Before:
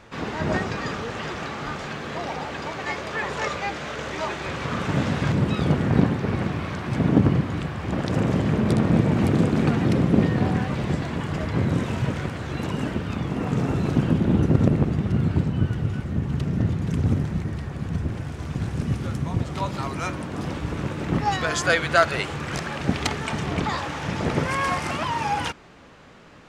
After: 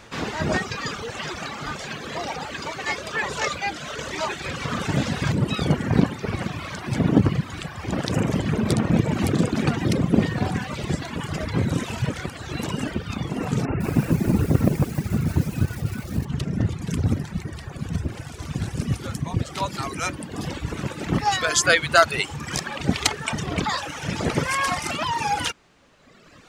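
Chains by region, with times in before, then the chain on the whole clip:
13.65–16.25 s: careless resampling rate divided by 8×, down none, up filtered + bit-crushed delay 154 ms, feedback 55%, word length 6-bit, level -9.5 dB
whole clip: reverb removal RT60 1.6 s; treble shelf 3.5 kHz +10 dB; trim +1.5 dB

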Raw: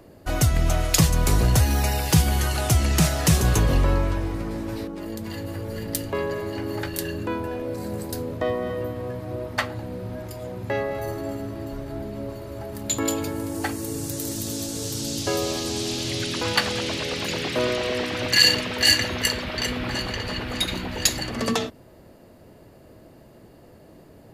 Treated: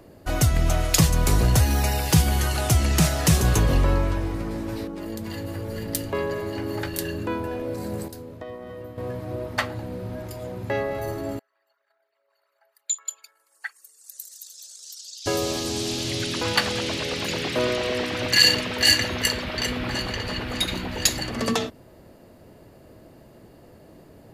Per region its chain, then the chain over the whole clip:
8.08–8.98 s: gate -27 dBFS, range -9 dB + compression 10:1, threshold -32 dBFS
11.39–15.26 s: resonances exaggerated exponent 2 + inverse Chebyshev high-pass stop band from 240 Hz, stop band 80 dB
whole clip: none

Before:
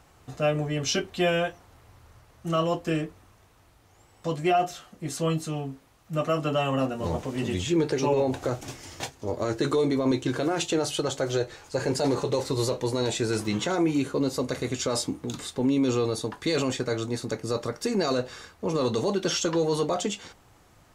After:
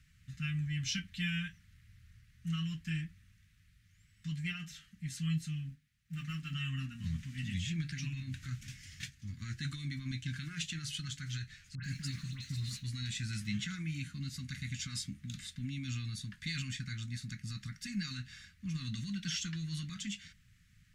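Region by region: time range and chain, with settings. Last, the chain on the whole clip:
5.69–6.53 s: companding laws mixed up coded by A + hum notches 50/100/150/200/250/300/350/400/450/500 Hz
11.75–12.84 s: companding laws mixed up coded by A + phase dispersion highs, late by 90 ms, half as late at 2 kHz
whole clip: elliptic band-stop 190–1800 Hz, stop band 50 dB; treble shelf 4.9 kHz -9 dB; trim -4 dB

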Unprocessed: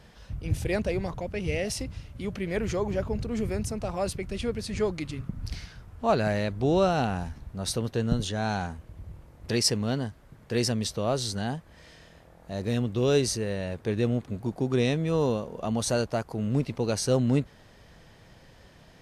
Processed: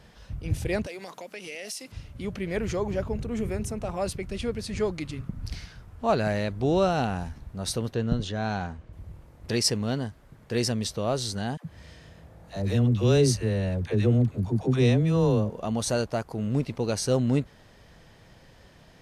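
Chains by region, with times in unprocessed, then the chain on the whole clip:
0.86–1.92 s: high-pass 200 Hz 24 dB/octave + tilt EQ +3 dB/octave + compression 3:1, threshold -36 dBFS
3.12–4.02 s: peaking EQ 4.7 kHz -7.5 dB 0.37 oct + de-hum 100.8 Hz, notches 5
7.94–8.93 s: distance through air 92 m + band-stop 860 Hz, Q 25
11.57–15.50 s: high-pass 41 Hz + peaking EQ 88 Hz +9 dB 2.2 oct + phase dispersion lows, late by 81 ms, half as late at 530 Hz
whole clip: none

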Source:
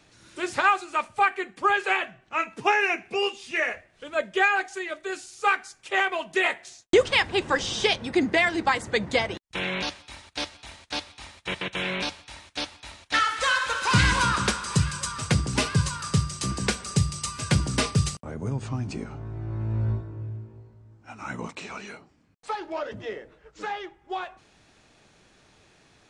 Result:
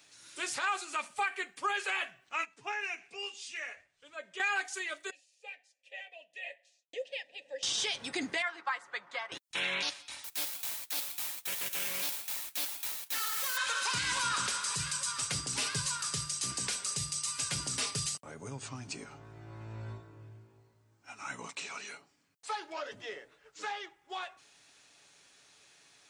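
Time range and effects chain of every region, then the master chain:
0.67–1.14 s: resonant low shelf 140 Hz -12 dB, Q 3 + three bands compressed up and down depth 40%
2.45–4.40 s: steep low-pass 8.9 kHz + compression 2:1, threshold -40 dBFS + three bands expanded up and down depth 100%
5.10–7.63 s: vowel filter e + static phaser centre 380 Hz, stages 6
8.42–9.32 s: band-pass filter 1.2 kHz, Q 2.1 + comb 5.6 ms, depth 35%
10.24–13.57 s: square wave that keeps the level + treble shelf 7.5 kHz +11 dB + valve stage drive 28 dB, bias 0.35
whole clip: tilt EQ +3.5 dB/octave; comb 7.1 ms, depth 33%; peak limiter -15.5 dBFS; trim -7 dB

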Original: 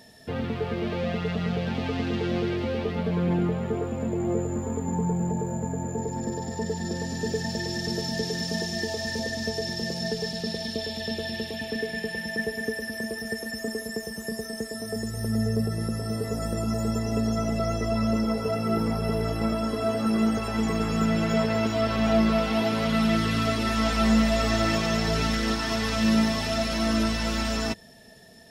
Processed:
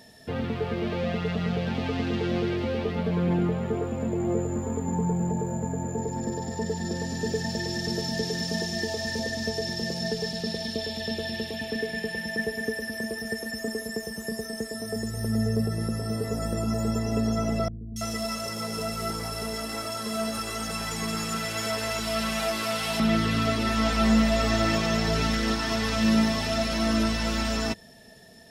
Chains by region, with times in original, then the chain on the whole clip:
17.68–23.00 s: CVSD coder 64 kbps + tilt shelf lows -7.5 dB, about 1.4 kHz + three bands offset in time lows, highs, mids 280/330 ms, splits 280/2900 Hz
whole clip: none

